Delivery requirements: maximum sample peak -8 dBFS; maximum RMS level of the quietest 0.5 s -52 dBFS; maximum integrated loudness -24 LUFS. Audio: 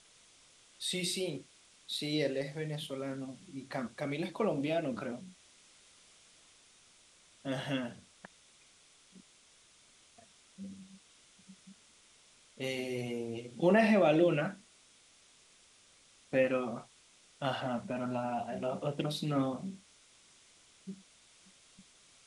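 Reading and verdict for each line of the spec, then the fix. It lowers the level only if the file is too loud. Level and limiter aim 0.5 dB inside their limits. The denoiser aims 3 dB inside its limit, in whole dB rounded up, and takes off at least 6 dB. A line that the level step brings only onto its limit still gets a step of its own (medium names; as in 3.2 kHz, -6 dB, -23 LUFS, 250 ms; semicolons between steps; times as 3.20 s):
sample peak -15.0 dBFS: pass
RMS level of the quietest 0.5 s -63 dBFS: pass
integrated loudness -34.0 LUFS: pass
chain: none needed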